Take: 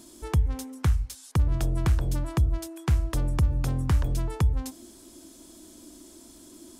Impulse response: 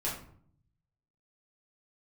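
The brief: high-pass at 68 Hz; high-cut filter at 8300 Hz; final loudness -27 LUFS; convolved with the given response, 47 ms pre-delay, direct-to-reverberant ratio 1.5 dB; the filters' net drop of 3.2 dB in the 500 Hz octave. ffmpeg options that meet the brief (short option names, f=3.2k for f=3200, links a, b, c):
-filter_complex "[0:a]highpass=68,lowpass=8.3k,equalizer=f=500:t=o:g=-4.5,asplit=2[a][b];[1:a]atrim=start_sample=2205,adelay=47[c];[b][c]afir=irnorm=-1:irlink=0,volume=-6.5dB[d];[a][d]amix=inputs=2:normalize=0,volume=-1.5dB"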